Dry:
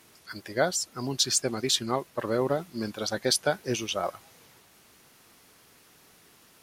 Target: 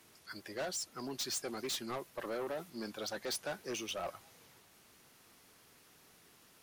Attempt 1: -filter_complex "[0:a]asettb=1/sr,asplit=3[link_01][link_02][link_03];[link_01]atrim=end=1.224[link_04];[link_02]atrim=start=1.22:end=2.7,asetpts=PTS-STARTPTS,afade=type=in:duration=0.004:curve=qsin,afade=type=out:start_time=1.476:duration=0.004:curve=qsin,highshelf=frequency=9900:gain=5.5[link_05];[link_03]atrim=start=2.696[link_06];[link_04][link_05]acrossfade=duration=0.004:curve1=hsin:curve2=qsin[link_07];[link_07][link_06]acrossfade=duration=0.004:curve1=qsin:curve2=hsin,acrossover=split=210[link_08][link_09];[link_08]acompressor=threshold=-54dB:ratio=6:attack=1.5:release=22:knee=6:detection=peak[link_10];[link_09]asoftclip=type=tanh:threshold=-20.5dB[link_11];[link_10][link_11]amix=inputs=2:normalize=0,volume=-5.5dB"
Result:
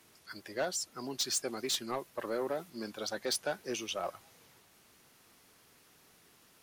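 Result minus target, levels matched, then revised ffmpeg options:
soft clipping: distortion −7 dB
-filter_complex "[0:a]asettb=1/sr,asplit=3[link_01][link_02][link_03];[link_01]atrim=end=1.224[link_04];[link_02]atrim=start=1.22:end=2.7,asetpts=PTS-STARTPTS,afade=type=in:duration=0.004:curve=qsin,afade=type=out:start_time=1.476:duration=0.004:curve=qsin,highshelf=frequency=9900:gain=5.5[link_05];[link_03]atrim=start=2.696[link_06];[link_04][link_05]acrossfade=duration=0.004:curve1=hsin:curve2=qsin[link_07];[link_07][link_06]acrossfade=duration=0.004:curve1=qsin:curve2=hsin,acrossover=split=210[link_08][link_09];[link_08]acompressor=threshold=-54dB:ratio=6:attack=1.5:release=22:knee=6:detection=peak[link_10];[link_09]asoftclip=type=tanh:threshold=-29dB[link_11];[link_10][link_11]amix=inputs=2:normalize=0,volume=-5.5dB"

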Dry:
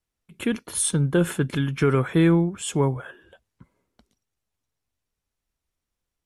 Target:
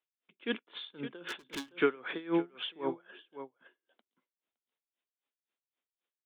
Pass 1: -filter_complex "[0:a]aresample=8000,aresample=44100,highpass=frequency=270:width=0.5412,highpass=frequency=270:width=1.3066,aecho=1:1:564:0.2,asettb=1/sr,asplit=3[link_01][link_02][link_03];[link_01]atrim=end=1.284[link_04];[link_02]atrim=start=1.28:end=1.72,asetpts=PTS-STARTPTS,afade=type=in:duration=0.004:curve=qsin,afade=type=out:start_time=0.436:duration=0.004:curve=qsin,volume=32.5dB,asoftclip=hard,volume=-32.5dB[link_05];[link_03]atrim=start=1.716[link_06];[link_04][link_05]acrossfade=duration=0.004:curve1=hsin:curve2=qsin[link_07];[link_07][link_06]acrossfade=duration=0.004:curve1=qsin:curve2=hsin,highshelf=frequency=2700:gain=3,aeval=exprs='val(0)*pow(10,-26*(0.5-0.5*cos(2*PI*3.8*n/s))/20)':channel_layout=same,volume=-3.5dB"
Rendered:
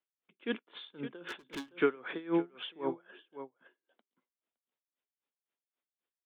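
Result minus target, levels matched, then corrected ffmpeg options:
4,000 Hz band −3.5 dB
-filter_complex "[0:a]aresample=8000,aresample=44100,highpass=frequency=270:width=0.5412,highpass=frequency=270:width=1.3066,aecho=1:1:564:0.2,asettb=1/sr,asplit=3[link_01][link_02][link_03];[link_01]atrim=end=1.284[link_04];[link_02]atrim=start=1.28:end=1.72,asetpts=PTS-STARTPTS,afade=type=in:duration=0.004:curve=qsin,afade=type=out:start_time=0.436:duration=0.004:curve=qsin,volume=32.5dB,asoftclip=hard,volume=-32.5dB[link_05];[link_03]atrim=start=1.716[link_06];[link_04][link_05]acrossfade=duration=0.004:curve1=hsin:curve2=qsin[link_07];[link_07][link_06]acrossfade=duration=0.004:curve1=qsin:curve2=hsin,highshelf=frequency=2700:gain=10,aeval=exprs='val(0)*pow(10,-26*(0.5-0.5*cos(2*PI*3.8*n/s))/20)':channel_layout=same,volume=-3.5dB"

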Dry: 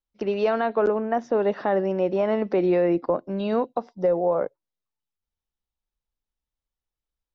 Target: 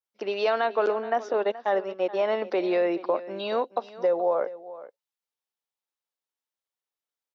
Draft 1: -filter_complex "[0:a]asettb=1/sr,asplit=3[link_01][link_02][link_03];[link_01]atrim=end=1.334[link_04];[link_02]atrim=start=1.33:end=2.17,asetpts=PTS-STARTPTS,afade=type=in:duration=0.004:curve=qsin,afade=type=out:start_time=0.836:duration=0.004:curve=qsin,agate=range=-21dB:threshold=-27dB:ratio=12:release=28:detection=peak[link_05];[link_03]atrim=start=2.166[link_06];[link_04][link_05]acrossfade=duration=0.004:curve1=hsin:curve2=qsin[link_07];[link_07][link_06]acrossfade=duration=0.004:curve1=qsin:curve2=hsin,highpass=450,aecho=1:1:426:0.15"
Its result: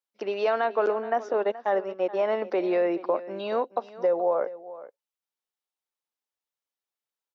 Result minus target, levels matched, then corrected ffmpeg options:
4,000 Hz band −5.0 dB
-filter_complex "[0:a]asettb=1/sr,asplit=3[link_01][link_02][link_03];[link_01]atrim=end=1.334[link_04];[link_02]atrim=start=1.33:end=2.17,asetpts=PTS-STARTPTS,afade=type=in:duration=0.004:curve=qsin,afade=type=out:start_time=0.836:duration=0.004:curve=qsin,agate=range=-21dB:threshold=-27dB:ratio=12:release=28:detection=peak[link_05];[link_03]atrim=start=2.166[link_06];[link_04][link_05]acrossfade=duration=0.004:curve1=hsin:curve2=qsin[link_07];[link_07][link_06]acrossfade=duration=0.004:curve1=qsin:curve2=hsin,highpass=450,adynamicequalizer=threshold=0.00251:dfrequency=3900:dqfactor=1.2:tfrequency=3900:tqfactor=1.2:attack=5:release=100:ratio=0.45:range=3.5:mode=boostabove:tftype=bell,aecho=1:1:426:0.15"

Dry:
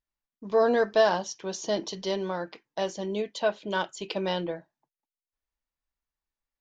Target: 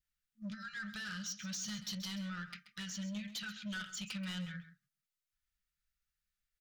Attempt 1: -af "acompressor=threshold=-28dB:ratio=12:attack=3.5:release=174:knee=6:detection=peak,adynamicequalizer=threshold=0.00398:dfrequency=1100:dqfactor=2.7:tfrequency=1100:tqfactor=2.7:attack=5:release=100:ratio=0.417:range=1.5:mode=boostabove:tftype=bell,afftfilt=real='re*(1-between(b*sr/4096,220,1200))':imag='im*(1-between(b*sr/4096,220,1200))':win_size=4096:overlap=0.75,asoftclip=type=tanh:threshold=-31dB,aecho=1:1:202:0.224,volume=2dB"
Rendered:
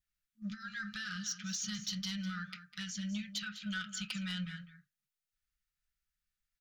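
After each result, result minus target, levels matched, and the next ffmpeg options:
echo 70 ms late; soft clipping: distortion −8 dB
-af "acompressor=threshold=-28dB:ratio=12:attack=3.5:release=174:knee=6:detection=peak,adynamicequalizer=threshold=0.00398:dfrequency=1100:dqfactor=2.7:tfrequency=1100:tqfactor=2.7:attack=5:release=100:ratio=0.417:range=1.5:mode=boostabove:tftype=bell,afftfilt=real='re*(1-between(b*sr/4096,220,1200))':imag='im*(1-between(b*sr/4096,220,1200))':win_size=4096:overlap=0.75,asoftclip=type=tanh:threshold=-31dB,aecho=1:1:132:0.224,volume=2dB"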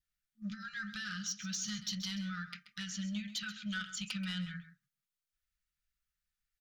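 soft clipping: distortion −8 dB
-af "acompressor=threshold=-28dB:ratio=12:attack=3.5:release=174:knee=6:detection=peak,adynamicequalizer=threshold=0.00398:dfrequency=1100:dqfactor=2.7:tfrequency=1100:tqfactor=2.7:attack=5:release=100:ratio=0.417:range=1.5:mode=boostabove:tftype=bell,afftfilt=real='re*(1-between(b*sr/4096,220,1200))':imag='im*(1-between(b*sr/4096,220,1200))':win_size=4096:overlap=0.75,asoftclip=type=tanh:threshold=-39dB,aecho=1:1:132:0.224,volume=2dB"

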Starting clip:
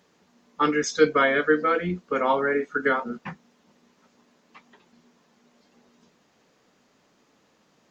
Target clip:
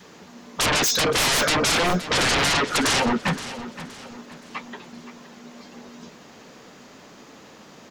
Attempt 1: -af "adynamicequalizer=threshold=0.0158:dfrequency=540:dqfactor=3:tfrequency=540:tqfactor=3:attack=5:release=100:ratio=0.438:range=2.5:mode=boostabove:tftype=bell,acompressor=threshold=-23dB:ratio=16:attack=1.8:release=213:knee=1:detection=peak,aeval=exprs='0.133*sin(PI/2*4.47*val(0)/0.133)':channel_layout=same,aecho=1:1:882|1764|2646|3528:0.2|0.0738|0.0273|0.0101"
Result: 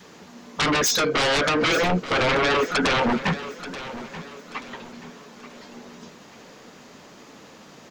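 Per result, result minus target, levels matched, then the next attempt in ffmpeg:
echo 361 ms late; downward compressor: peak gain reduction +6.5 dB
-af "adynamicequalizer=threshold=0.0158:dfrequency=540:dqfactor=3:tfrequency=540:tqfactor=3:attack=5:release=100:ratio=0.438:range=2.5:mode=boostabove:tftype=bell,acompressor=threshold=-23dB:ratio=16:attack=1.8:release=213:knee=1:detection=peak,aeval=exprs='0.133*sin(PI/2*4.47*val(0)/0.133)':channel_layout=same,aecho=1:1:521|1042|1563|2084:0.2|0.0738|0.0273|0.0101"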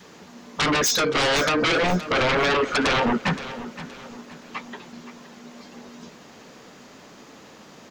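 downward compressor: peak gain reduction +6.5 dB
-af "adynamicequalizer=threshold=0.0158:dfrequency=540:dqfactor=3:tfrequency=540:tqfactor=3:attack=5:release=100:ratio=0.438:range=2.5:mode=boostabove:tftype=bell,acompressor=threshold=-16dB:ratio=16:attack=1.8:release=213:knee=1:detection=peak,aeval=exprs='0.133*sin(PI/2*4.47*val(0)/0.133)':channel_layout=same,aecho=1:1:521|1042|1563|2084:0.2|0.0738|0.0273|0.0101"

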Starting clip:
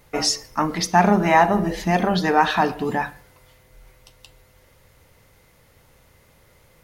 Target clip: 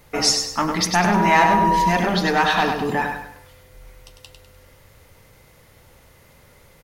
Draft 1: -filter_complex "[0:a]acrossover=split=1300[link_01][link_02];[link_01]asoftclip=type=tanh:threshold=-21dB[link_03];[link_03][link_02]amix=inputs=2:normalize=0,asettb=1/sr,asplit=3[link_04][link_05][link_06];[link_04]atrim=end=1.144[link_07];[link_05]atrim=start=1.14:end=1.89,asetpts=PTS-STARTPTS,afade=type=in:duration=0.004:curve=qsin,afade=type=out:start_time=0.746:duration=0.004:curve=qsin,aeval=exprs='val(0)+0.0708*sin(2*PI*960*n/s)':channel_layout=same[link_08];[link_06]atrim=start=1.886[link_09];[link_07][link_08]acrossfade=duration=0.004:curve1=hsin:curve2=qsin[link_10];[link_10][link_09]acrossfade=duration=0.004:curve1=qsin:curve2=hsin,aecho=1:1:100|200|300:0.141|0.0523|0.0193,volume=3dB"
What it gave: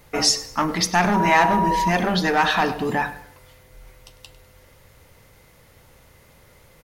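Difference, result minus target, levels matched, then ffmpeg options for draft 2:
echo-to-direct −11 dB
-filter_complex "[0:a]acrossover=split=1300[link_01][link_02];[link_01]asoftclip=type=tanh:threshold=-21dB[link_03];[link_03][link_02]amix=inputs=2:normalize=0,asettb=1/sr,asplit=3[link_04][link_05][link_06];[link_04]atrim=end=1.144[link_07];[link_05]atrim=start=1.14:end=1.89,asetpts=PTS-STARTPTS,afade=type=in:duration=0.004:curve=qsin,afade=type=out:start_time=0.746:duration=0.004:curve=qsin,aeval=exprs='val(0)+0.0708*sin(2*PI*960*n/s)':channel_layout=same[link_08];[link_06]atrim=start=1.886[link_09];[link_07][link_08]acrossfade=duration=0.004:curve1=hsin:curve2=qsin[link_10];[link_10][link_09]acrossfade=duration=0.004:curve1=qsin:curve2=hsin,aecho=1:1:100|200|300|400:0.501|0.185|0.0686|0.0254,volume=3dB"

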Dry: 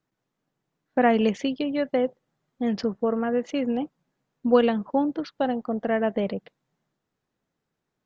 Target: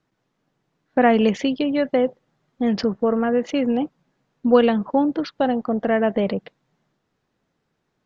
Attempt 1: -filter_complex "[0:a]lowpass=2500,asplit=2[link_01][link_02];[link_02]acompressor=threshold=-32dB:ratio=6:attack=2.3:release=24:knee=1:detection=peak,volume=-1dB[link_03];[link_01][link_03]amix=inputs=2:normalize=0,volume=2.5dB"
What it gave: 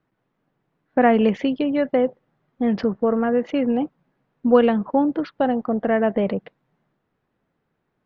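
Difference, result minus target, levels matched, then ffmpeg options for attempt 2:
8,000 Hz band −13.5 dB
-filter_complex "[0:a]lowpass=6200,asplit=2[link_01][link_02];[link_02]acompressor=threshold=-32dB:ratio=6:attack=2.3:release=24:knee=1:detection=peak,volume=-1dB[link_03];[link_01][link_03]amix=inputs=2:normalize=0,volume=2.5dB"

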